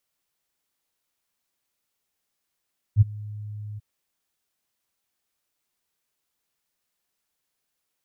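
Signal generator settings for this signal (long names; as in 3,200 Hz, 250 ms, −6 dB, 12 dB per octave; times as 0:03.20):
note with an ADSR envelope sine 105 Hz, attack 51 ms, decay 21 ms, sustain −23.5 dB, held 0.82 s, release 21 ms −9 dBFS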